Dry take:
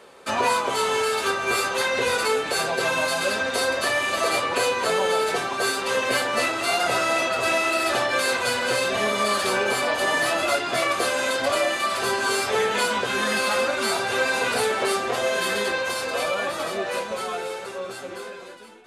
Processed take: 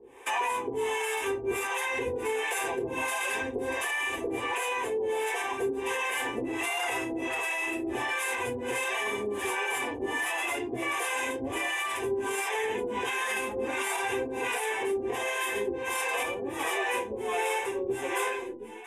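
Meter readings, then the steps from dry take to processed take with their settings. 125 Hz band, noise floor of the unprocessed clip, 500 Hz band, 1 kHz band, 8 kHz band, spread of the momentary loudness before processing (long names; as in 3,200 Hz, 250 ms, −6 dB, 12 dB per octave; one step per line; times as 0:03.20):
−7.0 dB, −37 dBFS, −7.0 dB, −7.5 dB, −7.5 dB, 6 LU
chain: two-band tremolo in antiphase 1.4 Hz, depth 100%, crossover 470 Hz
phaser with its sweep stopped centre 900 Hz, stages 8
brickwall limiter −26.5 dBFS, peak gain reduction 11 dB
speech leveller 0.5 s
level +5 dB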